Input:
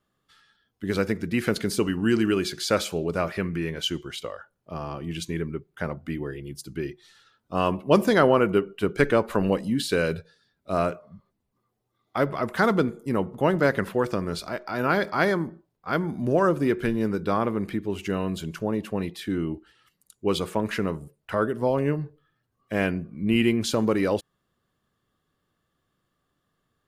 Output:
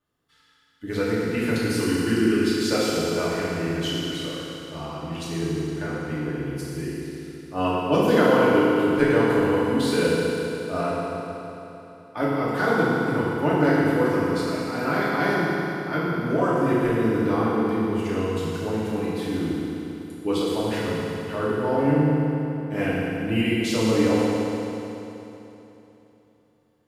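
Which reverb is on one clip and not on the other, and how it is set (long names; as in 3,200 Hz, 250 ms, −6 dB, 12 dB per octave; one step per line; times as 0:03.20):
feedback delay network reverb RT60 3.3 s, high-frequency decay 0.9×, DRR −9 dB
level −7.5 dB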